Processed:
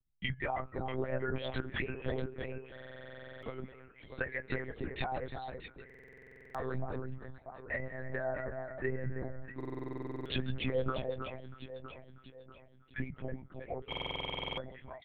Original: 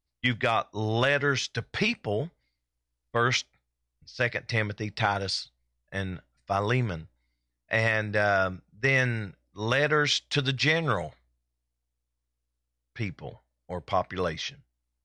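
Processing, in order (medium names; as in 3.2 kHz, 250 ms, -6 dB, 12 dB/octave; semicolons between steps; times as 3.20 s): resonances exaggerated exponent 2; de-hum 425.1 Hz, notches 31; low-pass that closes with the level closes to 680 Hz, closed at -20 dBFS; compression 3:1, threshold -39 dBFS, peak gain reduction 13.5 dB; flange 0.43 Hz, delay 6.5 ms, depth 2 ms, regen +22%; doubling 14 ms -5 dB; echo whose repeats swap between lows and highs 322 ms, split 1.6 kHz, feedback 66%, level -5.5 dB; monotone LPC vocoder at 8 kHz 130 Hz; buffer glitch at 2.73/5.85/9.56/13.88 s, samples 2048, times 14; trim +5 dB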